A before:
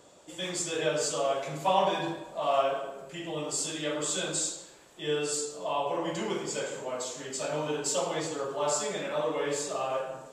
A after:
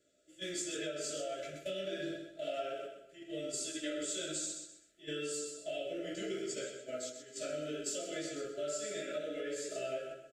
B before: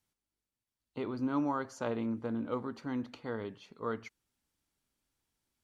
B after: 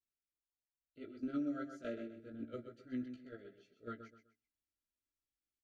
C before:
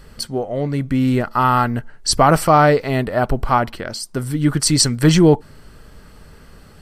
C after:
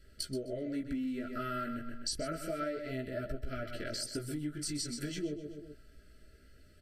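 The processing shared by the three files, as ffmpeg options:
ffmpeg -i in.wav -af "flanger=delay=15:depth=6.1:speed=0.3,agate=range=-12dB:threshold=-37dB:ratio=16:detection=peak,asuperstop=centerf=930:order=20:qfactor=1.5,aecho=1:1:127|254|381:0.316|0.0949|0.0285,acompressor=threshold=-33dB:ratio=10,aecho=1:1:3:0.45,volume=-2.5dB" out.wav

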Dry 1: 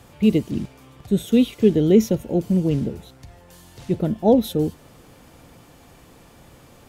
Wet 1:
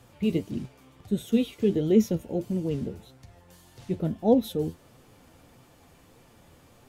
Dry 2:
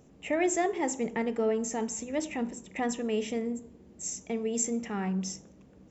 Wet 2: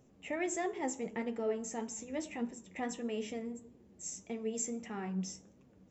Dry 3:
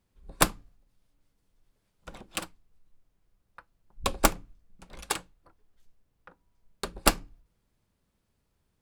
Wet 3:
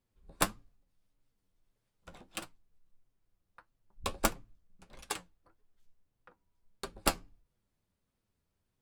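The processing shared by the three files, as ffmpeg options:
ffmpeg -i in.wav -af "flanger=delay=7.3:depth=5.3:regen=47:speed=1.6:shape=triangular,volume=-3dB" out.wav

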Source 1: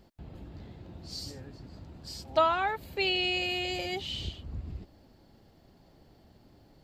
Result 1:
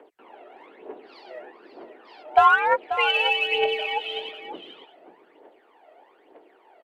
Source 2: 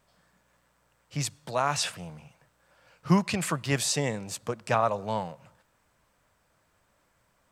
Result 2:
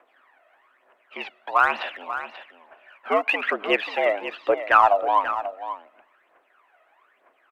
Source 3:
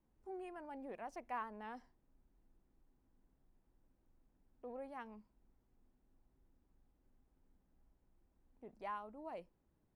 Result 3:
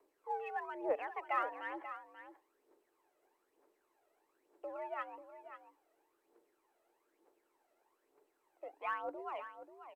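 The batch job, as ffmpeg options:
ffmpeg -i in.wav -filter_complex "[0:a]highpass=frequency=300:width_type=q:width=0.5412,highpass=frequency=300:width_type=q:width=1.307,lowpass=frequency=2800:width_type=q:width=0.5176,lowpass=frequency=2800:width_type=q:width=0.7071,lowpass=frequency=2800:width_type=q:width=1.932,afreqshift=80,asplit=2[link_01][link_02];[link_02]volume=19dB,asoftclip=hard,volume=-19dB,volume=-11dB[link_03];[link_01][link_03]amix=inputs=2:normalize=0,aphaser=in_gain=1:out_gain=1:delay=1.6:decay=0.71:speed=1.1:type=triangular,aecho=1:1:537:0.266,volume=5dB" -ar 32000 -c:a sbc -b:a 192k out.sbc

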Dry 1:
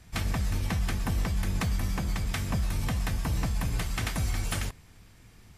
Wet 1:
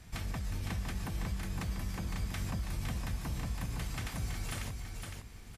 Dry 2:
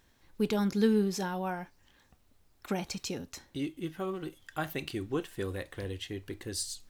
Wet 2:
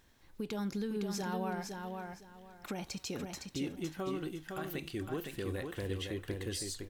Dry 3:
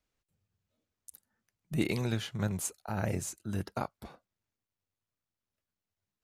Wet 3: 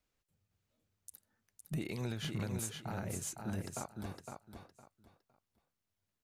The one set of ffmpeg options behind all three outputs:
ffmpeg -i in.wav -filter_complex "[0:a]acompressor=threshold=-32dB:ratio=6,alimiter=level_in=5dB:limit=-24dB:level=0:latency=1:release=126,volume=-5dB,asplit=2[link_01][link_02];[link_02]aecho=0:1:510|1020|1530:0.562|0.129|0.0297[link_03];[link_01][link_03]amix=inputs=2:normalize=0" out.wav

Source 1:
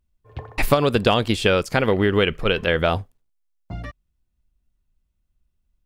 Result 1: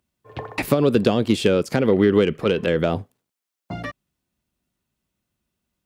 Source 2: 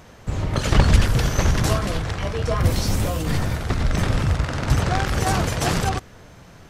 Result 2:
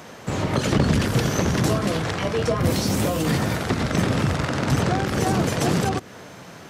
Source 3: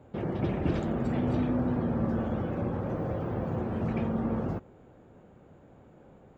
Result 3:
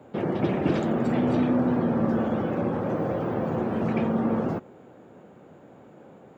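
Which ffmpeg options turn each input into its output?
ffmpeg -i in.wav -filter_complex "[0:a]acontrast=74,highpass=170,acrossover=split=460[link_01][link_02];[link_02]acompressor=threshold=-25dB:ratio=10[link_03];[link_01][link_03]amix=inputs=2:normalize=0" out.wav

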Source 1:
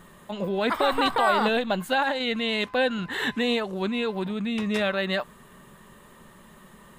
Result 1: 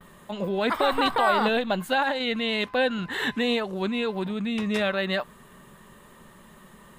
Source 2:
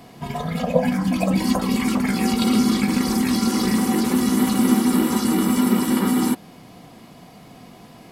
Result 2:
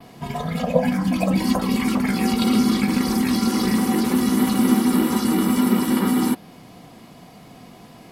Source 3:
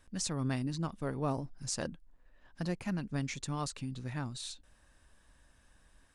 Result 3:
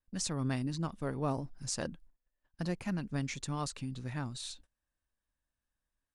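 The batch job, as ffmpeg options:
ffmpeg -i in.wav -af "agate=range=-25dB:threshold=-54dB:ratio=16:detection=peak,adynamicequalizer=threshold=0.00447:dfrequency=7400:dqfactor=1.8:tfrequency=7400:tqfactor=1.8:attack=5:release=100:ratio=0.375:range=2:mode=cutabove:tftype=bell" out.wav

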